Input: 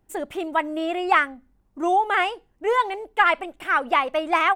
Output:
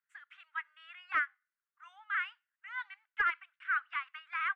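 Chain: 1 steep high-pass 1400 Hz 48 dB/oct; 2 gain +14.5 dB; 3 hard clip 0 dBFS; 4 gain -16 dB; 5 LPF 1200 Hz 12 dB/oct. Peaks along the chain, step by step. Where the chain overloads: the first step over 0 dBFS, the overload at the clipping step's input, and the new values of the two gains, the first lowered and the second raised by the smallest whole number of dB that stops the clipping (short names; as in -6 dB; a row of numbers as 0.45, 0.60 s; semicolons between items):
-9.0, +5.5, 0.0, -16.0, -20.0 dBFS; step 2, 5.5 dB; step 2 +8.5 dB, step 4 -10 dB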